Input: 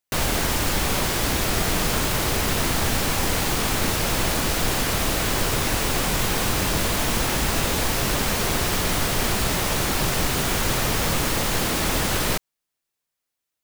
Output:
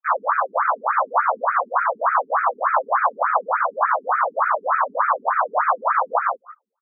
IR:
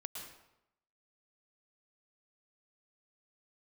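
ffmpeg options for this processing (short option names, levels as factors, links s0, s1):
-filter_complex "[0:a]lowshelf=f=370:t=q:w=3:g=-13.5,asetrate=88200,aresample=44100,dynaudnorm=f=100:g=3:m=1.58,aeval=exprs='val(0)+0.00631*sin(2*PI*7500*n/s)':c=same,asplit=4[s0][s1][s2][s3];[s1]asetrate=29433,aresample=44100,atempo=1.49831,volume=0.282[s4];[s2]asetrate=35002,aresample=44100,atempo=1.25992,volume=0.251[s5];[s3]asetrate=66075,aresample=44100,atempo=0.66742,volume=0.355[s6];[s0][s4][s5][s6]amix=inputs=4:normalize=0,asplit=2[s7][s8];[s8]asplit=4[s9][s10][s11][s12];[s9]adelay=177,afreqshift=45,volume=0.282[s13];[s10]adelay=354,afreqshift=90,volume=0.107[s14];[s11]adelay=531,afreqshift=135,volume=0.0407[s15];[s12]adelay=708,afreqshift=180,volume=0.0155[s16];[s13][s14][s15][s16]amix=inputs=4:normalize=0[s17];[s7][s17]amix=inputs=2:normalize=0,anlmdn=25.1,asplit=2[s18][s19];[s19]aeval=exprs='(mod(4.22*val(0)+1,2)-1)/4.22':c=same,volume=0.631[s20];[s18][s20]amix=inputs=2:normalize=0,firequalizer=gain_entry='entry(120,0);entry(340,-21);entry(520,13);entry(780,5);entry(1300,0);entry(2300,-19);entry(3300,-1);entry(5800,14);entry(10000,-9)':delay=0.05:min_phase=1,alimiter=level_in=3.76:limit=0.891:release=50:level=0:latency=1,afftfilt=real='re*between(b*sr/1024,290*pow(1800/290,0.5+0.5*sin(2*PI*3.4*pts/sr))/1.41,290*pow(1800/290,0.5+0.5*sin(2*PI*3.4*pts/sr))*1.41)':imag='im*between(b*sr/1024,290*pow(1800/290,0.5+0.5*sin(2*PI*3.4*pts/sr))/1.41,290*pow(1800/290,0.5+0.5*sin(2*PI*3.4*pts/sr))*1.41)':win_size=1024:overlap=0.75"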